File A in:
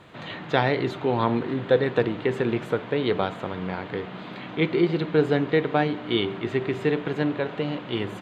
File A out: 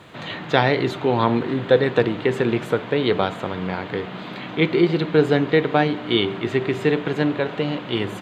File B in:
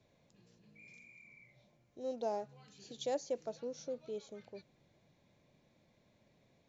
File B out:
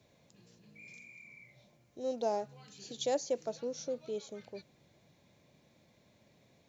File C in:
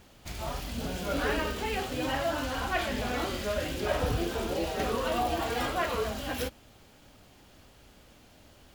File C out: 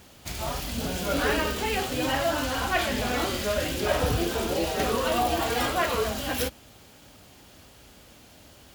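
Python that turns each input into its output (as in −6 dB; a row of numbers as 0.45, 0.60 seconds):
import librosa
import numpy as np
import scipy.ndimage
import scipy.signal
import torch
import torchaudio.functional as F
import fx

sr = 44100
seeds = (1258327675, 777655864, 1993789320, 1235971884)

y = scipy.signal.sosfilt(scipy.signal.butter(2, 45.0, 'highpass', fs=sr, output='sos'), x)
y = fx.high_shelf(y, sr, hz=4500.0, db=5.5)
y = y * 10.0 ** (4.0 / 20.0)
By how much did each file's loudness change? +4.0, +3.5, +4.5 LU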